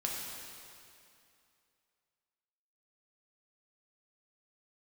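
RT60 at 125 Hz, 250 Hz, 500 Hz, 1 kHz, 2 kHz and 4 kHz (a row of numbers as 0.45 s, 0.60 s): 2.4 s, 2.6 s, 2.5 s, 2.6 s, 2.4 s, 2.3 s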